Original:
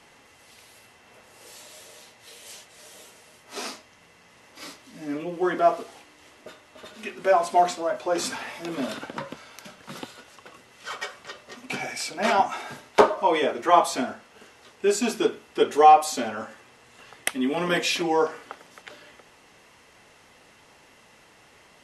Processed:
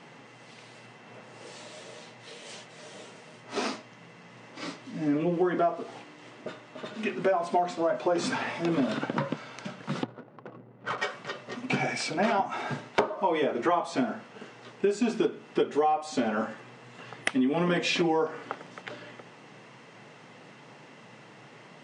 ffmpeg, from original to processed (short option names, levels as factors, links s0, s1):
-filter_complex "[0:a]asettb=1/sr,asplit=3[s0][s1][s2];[s0]atrim=end=10.034[s3];[s1]atrim=start=10.03:end=10.98,asetpts=PTS-STARTPTS,afade=t=in:d=0.004:c=qsin,afade=t=out:st=0.946:d=0.004:c=qsin,adynamicsmooth=sensitivity=5.5:basefreq=520[s4];[s2]atrim=start=10.976[s5];[s3][s4]acrossfade=d=0.004:c1=hsin:c2=qsin[s6];[s6][s5]acrossfade=d=0.004:c1=qsin:c2=hsin,aemphasis=mode=reproduction:type=bsi,afftfilt=real='re*between(b*sr/4096,110,9700)':imag='im*between(b*sr/4096,110,9700)':win_size=4096:overlap=0.75,acompressor=threshold=0.0501:ratio=12,volume=1.58"